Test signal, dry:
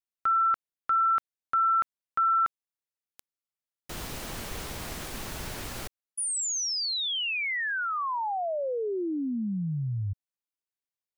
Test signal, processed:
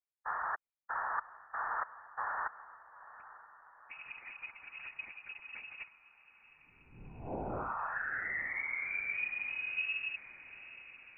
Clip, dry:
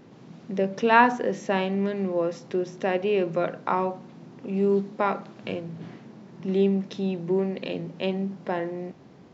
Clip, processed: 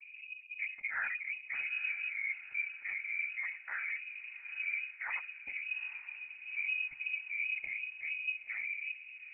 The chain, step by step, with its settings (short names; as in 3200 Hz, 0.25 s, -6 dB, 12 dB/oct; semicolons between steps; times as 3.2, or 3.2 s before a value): spectral contrast raised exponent 2.5; reverse; compressor 5:1, threshold -37 dBFS; reverse; noise vocoder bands 12; diffused feedback echo 0.87 s, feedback 54%, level -16 dB; inverted band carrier 2700 Hz